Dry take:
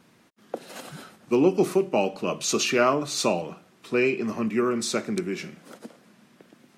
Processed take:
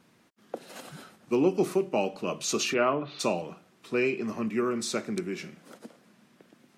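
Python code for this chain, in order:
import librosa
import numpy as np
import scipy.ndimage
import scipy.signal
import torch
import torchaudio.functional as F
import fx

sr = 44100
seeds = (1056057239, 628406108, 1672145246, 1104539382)

y = fx.ellip_bandpass(x, sr, low_hz=130.0, high_hz=3200.0, order=3, stop_db=40, at=(2.73, 3.19), fade=0.02)
y = y * librosa.db_to_amplitude(-4.0)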